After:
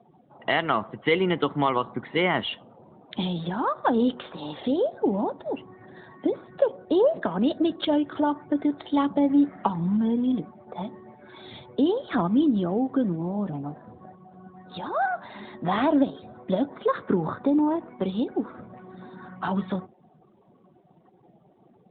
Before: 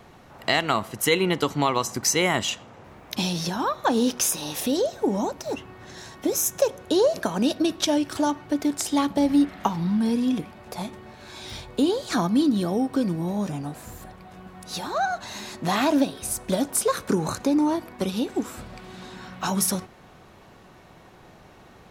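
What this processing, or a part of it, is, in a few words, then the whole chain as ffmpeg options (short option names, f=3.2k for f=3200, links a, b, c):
mobile call with aggressive noise cancelling: -af "highpass=130,bandreject=f=2.6k:w=7.1,afftdn=nr=22:nf=-43" -ar 8000 -c:a libopencore_amrnb -b:a 12200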